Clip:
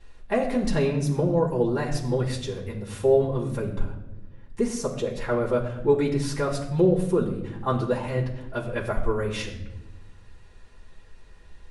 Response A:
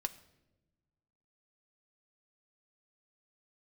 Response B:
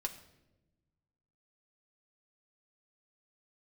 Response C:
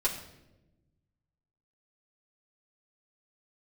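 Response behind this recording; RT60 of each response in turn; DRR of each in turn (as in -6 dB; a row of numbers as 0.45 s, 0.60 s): C; no single decay rate, no single decay rate, no single decay rate; 8.0 dB, 2.5 dB, -6.5 dB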